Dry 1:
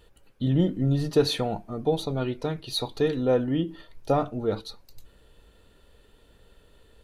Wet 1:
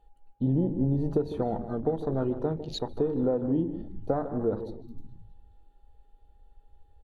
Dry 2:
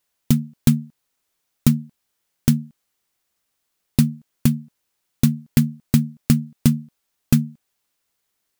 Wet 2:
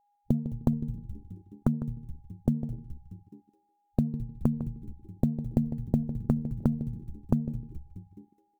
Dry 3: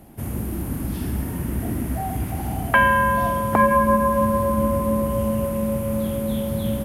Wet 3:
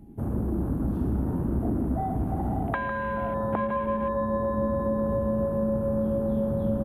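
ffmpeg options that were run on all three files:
-filter_complex "[0:a]equalizer=f=83:w=0.4:g=-7.5,bandreject=f=5100:w=10,asplit=2[s0][s1];[s1]asplit=5[s2][s3][s4][s5][s6];[s2]adelay=211,afreqshift=-110,volume=0.0944[s7];[s3]adelay=422,afreqshift=-220,volume=0.0556[s8];[s4]adelay=633,afreqshift=-330,volume=0.0327[s9];[s5]adelay=844,afreqshift=-440,volume=0.0195[s10];[s6]adelay=1055,afreqshift=-550,volume=0.0115[s11];[s7][s8][s9][s10][s11]amix=inputs=5:normalize=0[s12];[s0][s12]amix=inputs=2:normalize=0,aeval=exprs='val(0)+0.00224*sin(2*PI*820*n/s)':c=same,acompressor=threshold=0.0501:ratio=10,tiltshelf=f=890:g=6,asplit=2[s13][s14];[s14]adelay=153,lowpass=f=2700:p=1,volume=0.266,asplit=2[s15][s16];[s16]adelay=153,lowpass=f=2700:p=1,volume=0.24,asplit=2[s17][s18];[s18]adelay=153,lowpass=f=2700:p=1,volume=0.24[s19];[s15][s17][s19]amix=inputs=3:normalize=0[s20];[s13][s20]amix=inputs=2:normalize=0,afwtdn=0.0112"

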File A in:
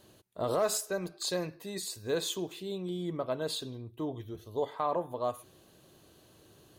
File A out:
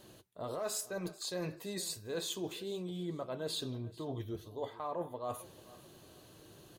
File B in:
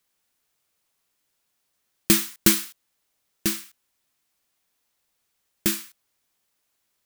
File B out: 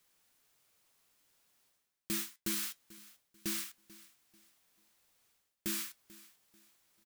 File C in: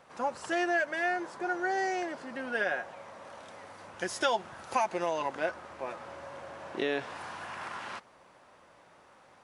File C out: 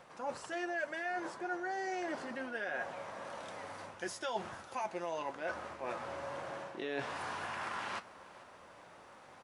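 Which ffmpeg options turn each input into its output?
-af "areverse,acompressor=threshold=0.0126:ratio=6,areverse,flanger=delay=5.5:depth=6.3:regen=-66:speed=0.3:shape=triangular,aecho=1:1:440|880|1320:0.1|0.032|0.0102,volume=2.11"

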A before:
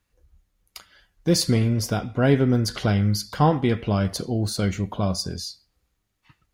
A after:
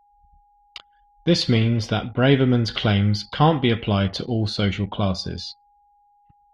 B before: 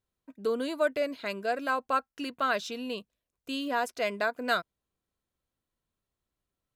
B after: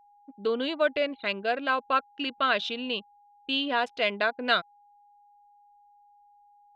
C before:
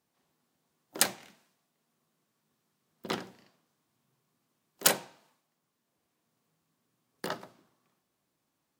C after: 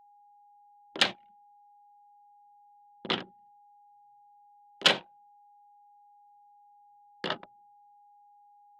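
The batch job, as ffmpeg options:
-af "anlmdn=0.1,lowpass=f=3300:t=q:w=3.3,aeval=exprs='val(0)+0.00126*sin(2*PI*820*n/s)':c=same,volume=1.19"

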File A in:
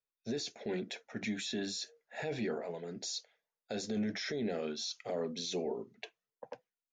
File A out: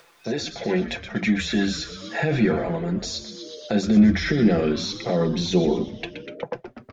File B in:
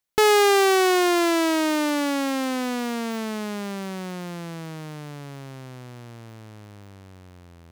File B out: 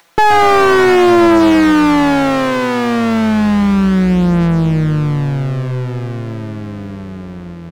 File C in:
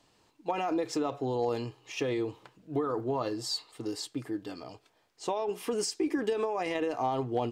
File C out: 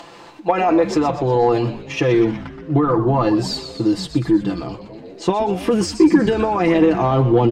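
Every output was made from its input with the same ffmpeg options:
-filter_complex "[0:a]agate=range=0.447:threshold=0.00316:ratio=16:detection=peak,aecho=1:1:5.9:0.64,asubboost=boost=9:cutoff=200,asplit=7[s0][s1][s2][s3][s4][s5][s6];[s1]adelay=122,afreqshift=-130,volume=0.282[s7];[s2]adelay=244,afreqshift=-260,volume=0.158[s8];[s3]adelay=366,afreqshift=-390,volume=0.0881[s9];[s4]adelay=488,afreqshift=-520,volume=0.0495[s10];[s5]adelay=610,afreqshift=-650,volume=0.0279[s11];[s6]adelay=732,afreqshift=-780,volume=0.0155[s12];[s0][s7][s8][s9][s10][s11][s12]amix=inputs=7:normalize=0,acompressor=mode=upward:threshold=0.0141:ratio=2.5,asplit=2[s13][s14];[s14]highpass=f=720:p=1,volume=12.6,asoftclip=type=tanh:threshold=0.75[s15];[s13][s15]amix=inputs=2:normalize=0,lowpass=f=1100:p=1,volume=0.501,volume=1.5"

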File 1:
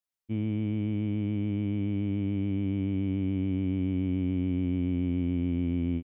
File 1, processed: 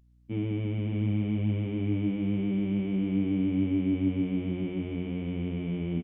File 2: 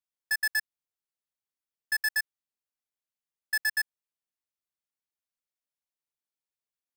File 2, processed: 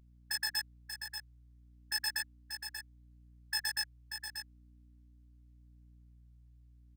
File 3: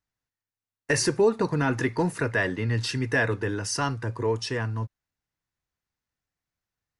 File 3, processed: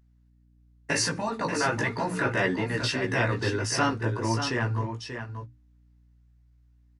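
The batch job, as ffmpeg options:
-af "highpass=98,bandreject=f=60:t=h:w=6,bandreject=f=120:t=h:w=6,bandreject=f=180:t=h:w=6,bandreject=f=240:t=h:w=6,bandreject=f=300:t=h:w=6,afftfilt=real='re*lt(hypot(re,im),0.316)':imag='im*lt(hypot(re,im),0.316)':win_size=1024:overlap=0.75,highshelf=f=8600:g=-9.5,aeval=exprs='val(0)+0.000562*(sin(2*PI*60*n/s)+sin(2*PI*2*60*n/s)/2+sin(2*PI*3*60*n/s)/3+sin(2*PI*4*60*n/s)/4+sin(2*PI*5*60*n/s)/5)':c=same,flanger=delay=15.5:depth=2.5:speed=0.38,aecho=1:1:586:0.398,volume=2"

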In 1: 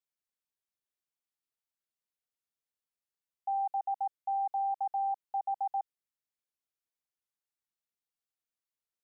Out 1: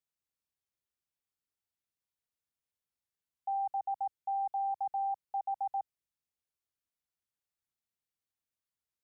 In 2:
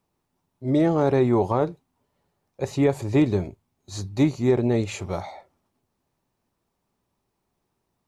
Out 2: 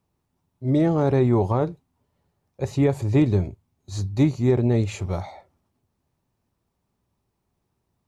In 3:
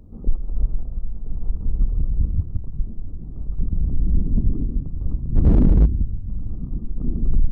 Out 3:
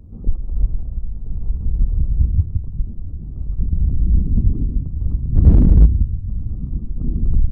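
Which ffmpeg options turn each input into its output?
-af "equalizer=f=79:w=0.57:g=9,volume=0.794"

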